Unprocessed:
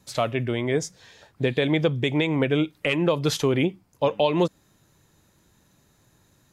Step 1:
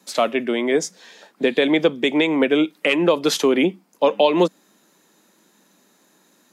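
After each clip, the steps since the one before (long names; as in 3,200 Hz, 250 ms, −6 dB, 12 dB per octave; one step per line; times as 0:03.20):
Butterworth high-pass 190 Hz 48 dB per octave
level +5.5 dB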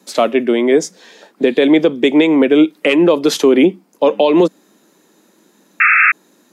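parametric band 340 Hz +6.5 dB 1.6 octaves
sound drawn into the spectrogram noise, 0:05.80–0:06.12, 1,200–2,700 Hz −6 dBFS
boost into a limiter +3.5 dB
level −1 dB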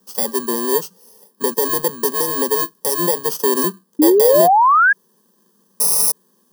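samples in bit-reversed order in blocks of 32 samples
phaser with its sweep stopped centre 450 Hz, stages 8
sound drawn into the spectrogram rise, 0:03.99–0:04.93, 290–1,700 Hz −7 dBFS
level −4.5 dB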